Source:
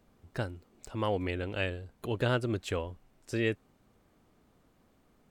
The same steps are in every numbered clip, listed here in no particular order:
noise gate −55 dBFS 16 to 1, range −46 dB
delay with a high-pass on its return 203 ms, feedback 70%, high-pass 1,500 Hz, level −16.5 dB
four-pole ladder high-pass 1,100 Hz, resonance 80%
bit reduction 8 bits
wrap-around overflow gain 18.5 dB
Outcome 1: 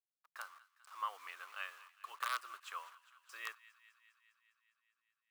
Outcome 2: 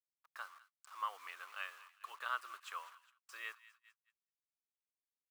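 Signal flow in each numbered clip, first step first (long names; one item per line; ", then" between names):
bit reduction, then noise gate, then delay with a high-pass on its return, then wrap-around overflow, then four-pole ladder high-pass
bit reduction, then delay with a high-pass on its return, then noise gate, then four-pole ladder high-pass, then wrap-around overflow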